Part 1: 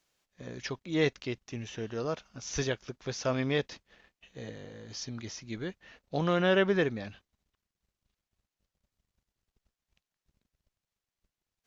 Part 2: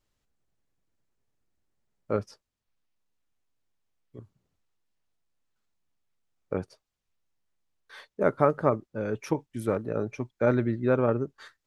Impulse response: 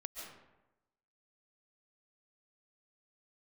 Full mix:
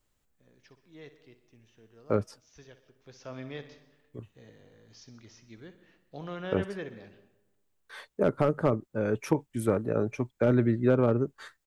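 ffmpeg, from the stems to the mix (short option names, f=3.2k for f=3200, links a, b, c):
-filter_complex "[0:a]volume=-13dB,afade=t=in:st=2.89:d=0.49:silence=0.316228,asplit=3[a][b][c];[b]volume=-8.5dB[d];[c]volume=-11dB[e];[1:a]aexciter=amount=1.3:drive=9:freq=7.2k,volume=13.5dB,asoftclip=hard,volume=-13.5dB,volume=2.5dB[f];[2:a]atrim=start_sample=2205[g];[d][g]afir=irnorm=-1:irlink=0[h];[e]aecho=0:1:62|124|186|248|310|372:1|0.46|0.212|0.0973|0.0448|0.0206[i];[a][f][h][i]amix=inputs=4:normalize=0,highshelf=f=5.4k:g=-5,acrossover=split=400[j][k];[k]acompressor=threshold=-26dB:ratio=6[l];[j][l]amix=inputs=2:normalize=0"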